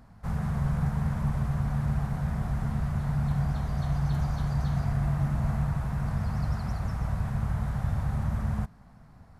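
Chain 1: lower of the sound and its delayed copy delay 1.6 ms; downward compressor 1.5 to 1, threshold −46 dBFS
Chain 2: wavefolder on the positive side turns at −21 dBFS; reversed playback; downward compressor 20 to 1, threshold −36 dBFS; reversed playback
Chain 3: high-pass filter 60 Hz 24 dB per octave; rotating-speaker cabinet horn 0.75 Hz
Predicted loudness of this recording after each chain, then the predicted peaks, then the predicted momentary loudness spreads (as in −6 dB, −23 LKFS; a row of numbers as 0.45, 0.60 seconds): −38.5, −41.5, −31.5 LKFS; −24.5, −27.0, −17.5 dBFS; 3, 2, 5 LU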